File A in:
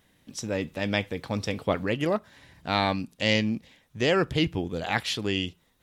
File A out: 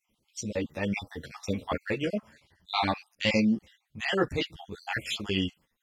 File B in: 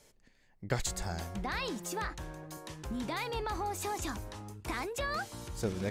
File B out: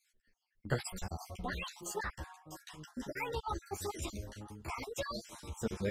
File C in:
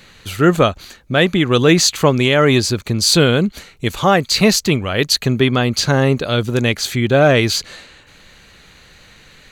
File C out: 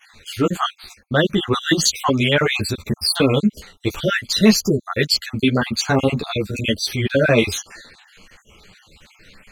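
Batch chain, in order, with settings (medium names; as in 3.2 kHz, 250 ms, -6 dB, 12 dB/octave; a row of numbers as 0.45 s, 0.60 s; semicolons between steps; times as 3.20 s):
random holes in the spectrogram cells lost 51%; gate -52 dBFS, range -7 dB; three-phase chorus; trim +2.5 dB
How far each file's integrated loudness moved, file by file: -3.0 LU, -4.0 LU, -4.0 LU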